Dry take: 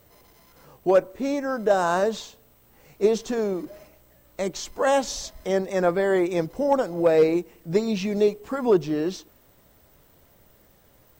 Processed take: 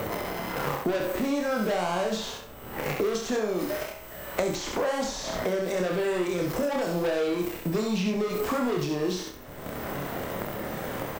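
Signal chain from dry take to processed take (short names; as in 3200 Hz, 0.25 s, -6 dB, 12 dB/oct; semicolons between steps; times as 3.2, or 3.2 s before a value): 3.15–4.4 low shelf 490 Hz -9 dB; sample leveller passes 3; limiter -32.5 dBFS, peak gain reduction 23.5 dB; doubler 28 ms -4 dB; thinning echo 66 ms, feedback 25%, high-pass 460 Hz, level -3.5 dB; three-band squash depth 100%; gain +7.5 dB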